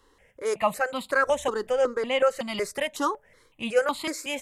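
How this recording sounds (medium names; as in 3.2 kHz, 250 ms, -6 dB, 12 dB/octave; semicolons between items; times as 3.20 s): notches that jump at a steady rate 5.4 Hz 630–1700 Hz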